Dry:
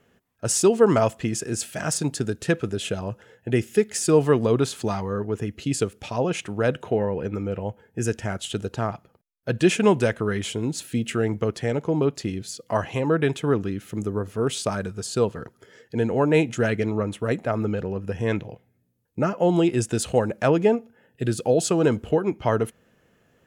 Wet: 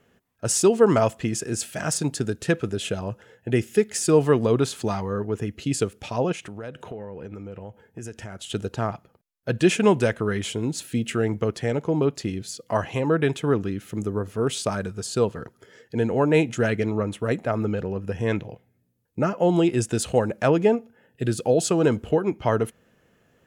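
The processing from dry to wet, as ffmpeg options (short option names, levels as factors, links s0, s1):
-filter_complex "[0:a]asettb=1/sr,asplit=3[s0][s1][s2];[s0]atrim=end=6.324[s3];[s1]atrim=start=6.32:end=8.5,asetpts=PTS-STARTPTS,afade=t=in:d=0.004:c=qsin,afade=t=out:st=2.176:d=0.004:c=qsin,acompressor=threshold=0.02:ratio=4:attack=3.2:release=140:knee=1:detection=peak[s4];[s2]atrim=start=8.496[s5];[s3][s4]acrossfade=d=0.004:c1=hsin:c2=qsin[s6];[s6][s5]acrossfade=d=0.004:c1=qsin:c2=hsin"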